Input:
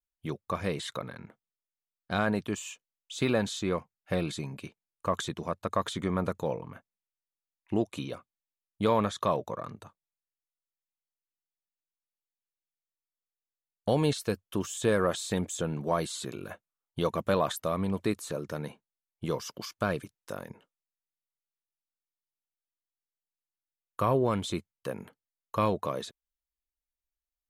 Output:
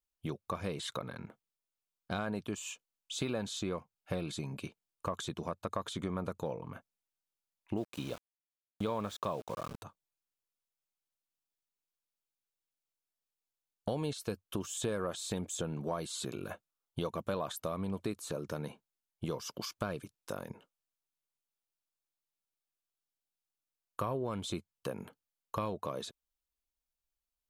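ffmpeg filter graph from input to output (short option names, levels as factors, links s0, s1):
-filter_complex "[0:a]asettb=1/sr,asplit=3[s0][s1][s2];[s0]atrim=end=7.774[s3];[s1]atrim=start=7.77:end=9.83,asetpts=PTS-STARTPTS,afade=t=in:d=0.004:c=qsin,afade=t=out:st=2.056:d=0.004:c=qsin,lowpass=9700,aeval=exprs='val(0)*gte(abs(val(0)),0.00794)':c=same[s4];[s2]atrim=start=9.826[s5];[s3][s4]acrossfade=d=0.004:c1=hsin:c2=qsin[s6];[s6][s5]acrossfade=d=0.004:c1=qsin:c2=hsin,equalizer=f=1900:w=5.1:g=-7,acompressor=threshold=0.0158:ratio=3,volume=1.12"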